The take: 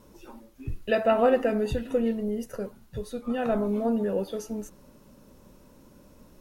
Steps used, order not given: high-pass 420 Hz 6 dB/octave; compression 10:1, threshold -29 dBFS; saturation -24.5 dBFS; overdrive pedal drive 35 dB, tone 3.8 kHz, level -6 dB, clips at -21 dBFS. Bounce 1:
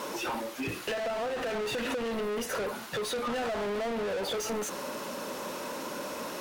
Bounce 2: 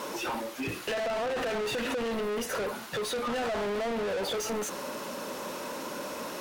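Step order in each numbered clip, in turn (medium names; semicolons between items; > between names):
high-pass > overdrive pedal > compression > saturation; high-pass > overdrive pedal > saturation > compression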